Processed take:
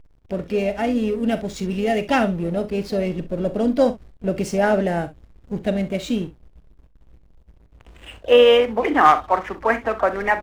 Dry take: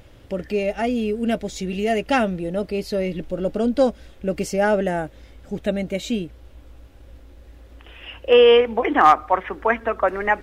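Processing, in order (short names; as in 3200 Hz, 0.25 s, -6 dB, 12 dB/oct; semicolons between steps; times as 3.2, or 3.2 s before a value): dynamic EQ 150 Hz, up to +4 dB, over -42 dBFS, Q 1.7; backlash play -34.5 dBFS; on a send: early reflections 41 ms -13 dB, 65 ms -15.5 dB; on the sum: harmoniser +3 st -16 dB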